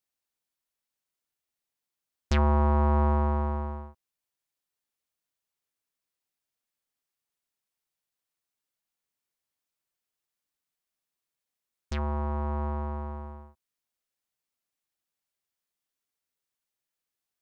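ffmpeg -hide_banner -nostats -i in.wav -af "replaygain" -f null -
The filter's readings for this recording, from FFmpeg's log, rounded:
track_gain = +14.1 dB
track_peak = 0.130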